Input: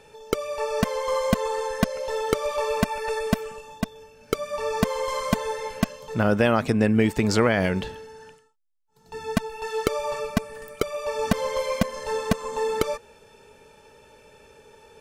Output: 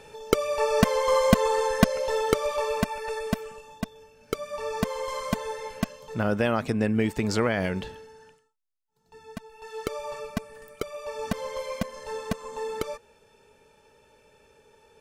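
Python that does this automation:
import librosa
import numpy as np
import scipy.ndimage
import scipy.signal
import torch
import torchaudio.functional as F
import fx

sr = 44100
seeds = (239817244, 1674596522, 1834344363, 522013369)

y = fx.gain(x, sr, db=fx.line((1.92, 3.0), (3.04, -4.5), (7.96, -4.5), (9.39, -15.5), (9.91, -7.0)))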